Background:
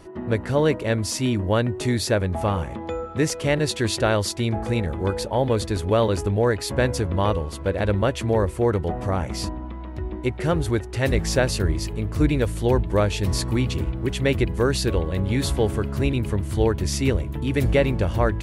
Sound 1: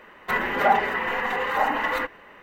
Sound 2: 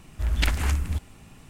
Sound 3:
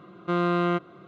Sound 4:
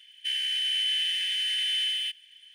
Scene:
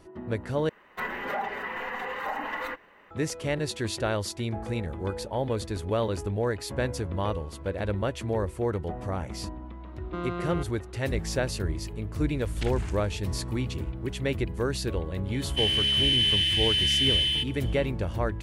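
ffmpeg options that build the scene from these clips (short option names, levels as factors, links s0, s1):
-filter_complex "[0:a]volume=0.422[s0];[1:a]alimiter=limit=0.211:level=0:latency=1:release=111[s1];[3:a]alimiter=limit=0.106:level=0:latency=1:release=71[s2];[2:a]lowpass=f=9600:w=0.5412,lowpass=f=9600:w=1.3066[s3];[4:a]equalizer=f=3600:w=1.5:g=5.5[s4];[s0]asplit=2[s5][s6];[s5]atrim=end=0.694[s7];[s1]atrim=end=2.42,asetpts=PTS-STARTPTS,volume=0.398[s8];[s6]atrim=start=3.106[s9];[s2]atrim=end=1.07,asetpts=PTS-STARTPTS,volume=0.531,afade=t=in:d=0.004:c=hsin,afade=t=out:st=1.066:d=0.004:c=hsin,adelay=9850[s10];[s3]atrim=end=1.49,asetpts=PTS-STARTPTS,volume=0.251,afade=t=in:d=0.004:c=hsin,afade=t=out:st=1.486:d=0.004:c=hsin,adelay=12190[s11];[s4]atrim=end=2.54,asetpts=PTS-STARTPTS,volume=0.944,afade=t=in:d=0.004:c=hsin,afade=t=out:st=2.536:d=0.004:c=hsin,adelay=15320[s12];[s7][s8]acrossfade=d=0.004:c1=hsin:c2=hsin[s13];[s13][s9]acrossfade=d=0.004:c1=hsin:c2=hsin[s14];[s14][s10][s11][s12]amix=inputs=4:normalize=0"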